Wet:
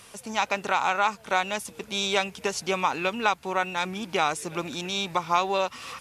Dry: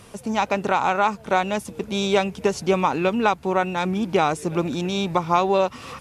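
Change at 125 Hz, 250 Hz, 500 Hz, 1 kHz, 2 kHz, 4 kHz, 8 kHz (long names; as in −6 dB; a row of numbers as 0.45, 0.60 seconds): −11.0, −10.5, −8.0, −4.0, 0.0, +1.5, +2.0 decibels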